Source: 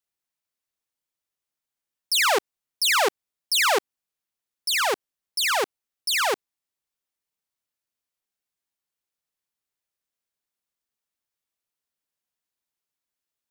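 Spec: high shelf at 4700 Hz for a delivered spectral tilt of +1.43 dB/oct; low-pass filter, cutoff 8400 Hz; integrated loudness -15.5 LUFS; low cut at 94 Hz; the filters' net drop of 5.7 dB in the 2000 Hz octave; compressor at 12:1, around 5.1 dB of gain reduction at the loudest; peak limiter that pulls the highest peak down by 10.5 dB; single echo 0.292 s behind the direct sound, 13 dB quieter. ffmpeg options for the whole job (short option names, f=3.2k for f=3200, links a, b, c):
-af "highpass=94,lowpass=8.4k,equalizer=f=2k:t=o:g=-6,highshelf=f=4.7k:g=-7.5,acompressor=threshold=-25dB:ratio=12,alimiter=level_in=8dB:limit=-24dB:level=0:latency=1,volume=-8dB,aecho=1:1:292:0.224,volume=23dB"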